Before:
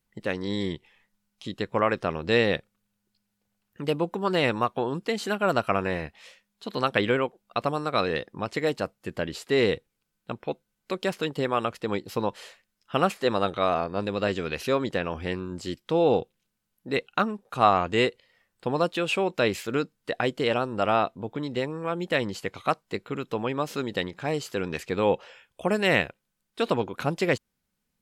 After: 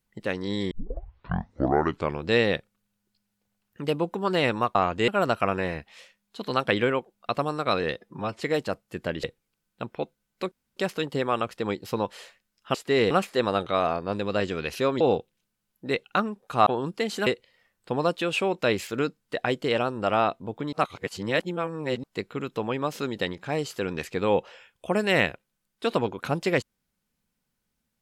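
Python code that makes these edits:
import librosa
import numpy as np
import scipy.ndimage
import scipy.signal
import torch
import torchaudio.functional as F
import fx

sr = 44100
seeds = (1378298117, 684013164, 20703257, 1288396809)

y = fx.edit(x, sr, fx.tape_start(start_s=0.71, length_s=1.56),
    fx.swap(start_s=4.75, length_s=0.6, other_s=17.69, other_length_s=0.33),
    fx.stretch_span(start_s=8.25, length_s=0.29, factor=1.5),
    fx.move(start_s=9.36, length_s=0.36, to_s=12.98),
    fx.insert_room_tone(at_s=11.0, length_s=0.25),
    fx.cut(start_s=14.88, length_s=1.15),
    fx.reverse_span(start_s=21.48, length_s=1.31), tone=tone)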